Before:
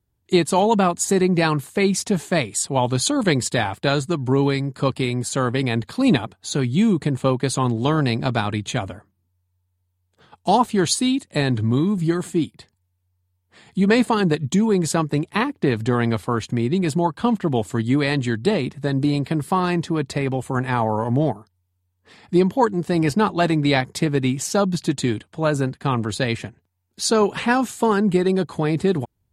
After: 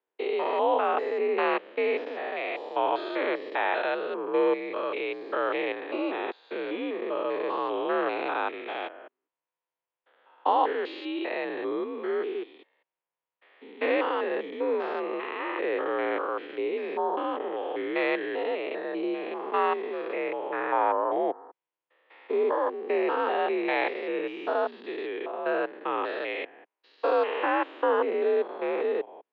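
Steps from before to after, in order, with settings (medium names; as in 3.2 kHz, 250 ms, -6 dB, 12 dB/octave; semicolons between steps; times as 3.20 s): spectrogram pixelated in time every 200 ms; mistuned SSB +59 Hz 340–3000 Hz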